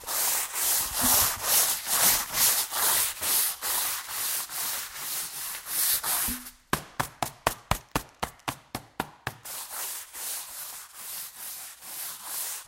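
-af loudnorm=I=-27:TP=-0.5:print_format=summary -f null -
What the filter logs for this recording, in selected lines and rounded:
Input Integrated:    -27.0 LUFS
Input True Peak:      -3.8 dBTP
Input LRA:            13.0 LU
Input Threshold:     -37.4 LUFS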